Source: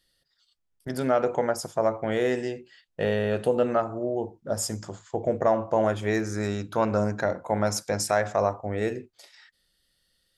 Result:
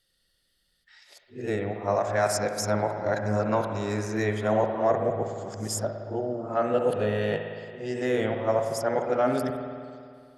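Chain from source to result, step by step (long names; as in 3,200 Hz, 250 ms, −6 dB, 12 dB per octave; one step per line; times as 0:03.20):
played backwards from end to start
spring reverb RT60 2.2 s, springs 56 ms, chirp 60 ms, DRR 4.5 dB
level −1.5 dB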